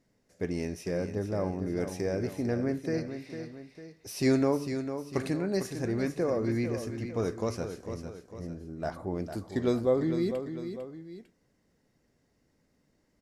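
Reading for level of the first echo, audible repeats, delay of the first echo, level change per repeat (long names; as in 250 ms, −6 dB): −9.0 dB, 2, 451 ms, −6.5 dB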